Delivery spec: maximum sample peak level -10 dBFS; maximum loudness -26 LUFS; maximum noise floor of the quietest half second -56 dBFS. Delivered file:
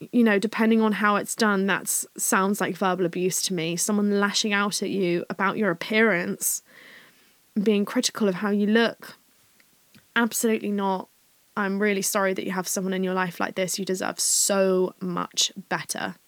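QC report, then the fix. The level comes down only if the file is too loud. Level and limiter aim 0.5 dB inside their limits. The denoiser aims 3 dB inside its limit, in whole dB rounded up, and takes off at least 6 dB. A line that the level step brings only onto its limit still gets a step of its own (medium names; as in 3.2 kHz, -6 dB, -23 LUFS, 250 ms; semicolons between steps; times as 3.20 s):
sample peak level -6.5 dBFS: fail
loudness -24.0 LUFS: fail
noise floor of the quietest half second -61 dBFS: pass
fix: trim -2.5 dB; peak limiter -10.5 dBFS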